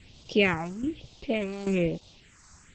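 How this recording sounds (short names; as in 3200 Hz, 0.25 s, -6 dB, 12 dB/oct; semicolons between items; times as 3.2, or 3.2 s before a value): tremolo saw down 1.2 Hz, depth 70%; a quantiser's noise floor 10-bit, dither triangular; phasing stages 4, 1.1 Hz, lowest notch 490–1700 Hz; Opus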